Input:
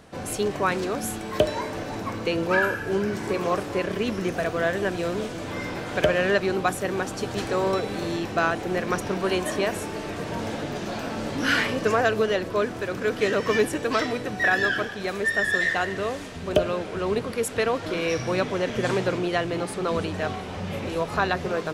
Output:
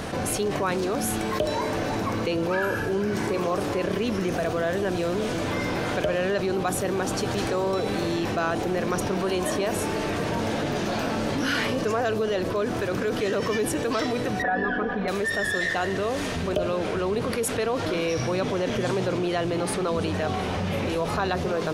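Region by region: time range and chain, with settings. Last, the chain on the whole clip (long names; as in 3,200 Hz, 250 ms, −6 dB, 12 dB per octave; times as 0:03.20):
0:14.42–0:15.08: low-pass filter 1,400 Hz + comb filter 4.1 ms, depth 90%
whole clip: notch filter 7,600 Hz, Q 16; dynamic equaliser 1,900 Hz, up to −5 dB, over −36 dBFS, Q 1.2; envelope flattener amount 70%; level −6.5 dB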